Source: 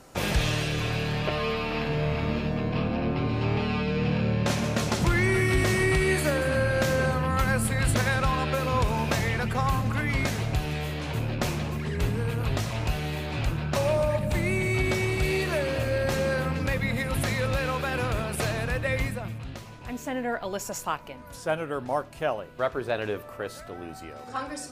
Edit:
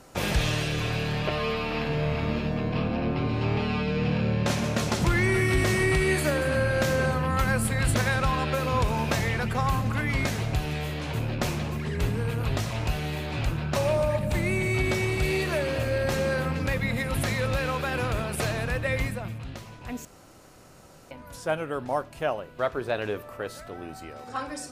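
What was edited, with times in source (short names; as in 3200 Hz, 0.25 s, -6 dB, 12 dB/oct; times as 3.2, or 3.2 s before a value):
20.05–21.11 room tone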